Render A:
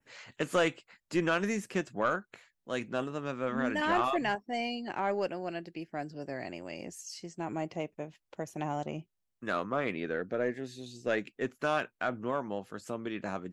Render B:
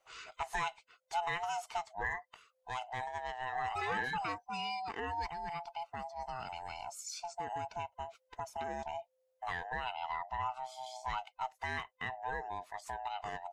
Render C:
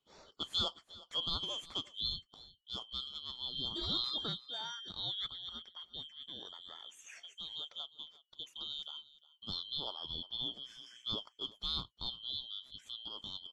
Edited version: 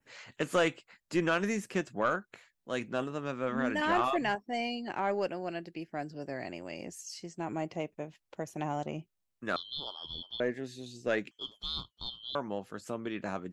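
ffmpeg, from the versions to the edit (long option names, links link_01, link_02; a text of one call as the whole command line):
ffmpeg -i take0.wav -i take1.wav -i take2.wav -filter_complex "[2:a]asplit=2[link_01][link_02];[0:a]asplit=3[link_03][link_04][link_05];[link_03]atrim=end=9.562[link_06];[link_01]atrim=start=9.558:end=10.402[link_07];[link_04]atrim=start=10.398:end=11.312[link_08];[link_02]atrim=start=11.308:end=12.352[link_09];[link_05]atrim=start=12.348[link_10];[link_06][link_07]acrossfade=duration=0.004:curve1=hsin:curve2=hsin[link_11];[link_11][link_08]acrossfade=duration=0.004:curve1=hsin:curve2=hsin[link_12];[link_12][link_09]acrossfade=duration=0.004:curve1=hsin:curve2=hsin[link_13];[link_13][link_10]acrossfade=duration=0.004:curve1=hsin:curve2=hsin" out.wav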